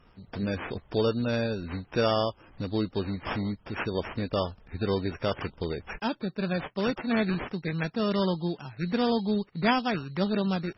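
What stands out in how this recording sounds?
aliases and images of a low sample rate 4100 Hz, jitter 0%; MP3

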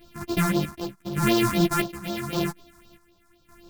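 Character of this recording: a buzz of ramps at a fixed pitch in blocks of 128 samples; phasing stages 4, 3.9 Hz, lowest notch 470–2100 Hz; chopped level 0.86 Hz, depth 65%, duty 55%; a shimmering, thickened sound

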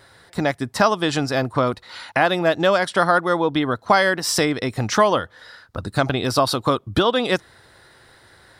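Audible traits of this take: noise floor -52 dBFS; spectral tilt -4.5 dB/oct

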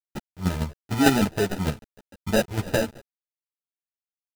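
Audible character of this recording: aliases and images of a low sample rate 1100 Hz, jitter 0%; chopped level 6.6 Hz, depth 60%, duty 15%; a quantiser's noise floor 8-bit, dither none; a shimmering, thickened sound

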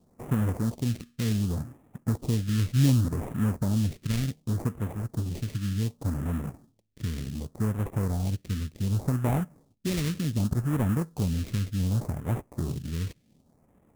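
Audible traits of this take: aliases and images of a low sample rate 1500 Hz, jitter 20%; phasing stages 2, 0.67 Hz, lowest notch 770–4300 Hz

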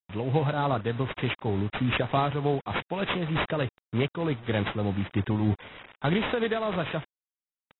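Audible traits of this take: a quantiser's noise floor 8-bit, dither none; tremolo triangle 3.3 Hz, depth 50%; aliases and images of a low sample rate 5400 Hz, jitter 20%; AAC

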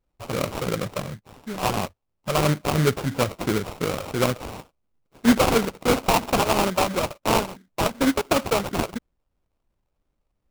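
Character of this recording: a buzz of ramps at a fixed pitch in blocks of 8 samples; phasing stages 4, 2.9 Hz, lowest notch 220–3300 Hz; aliases and images of a low sample rate 1800 Hz, jitter 20%

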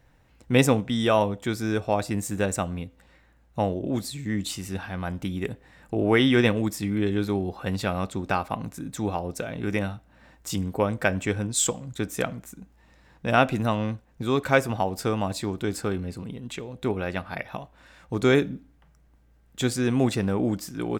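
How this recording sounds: noise floor -59 dBFS; spectral tilt -5.0 dB/oct

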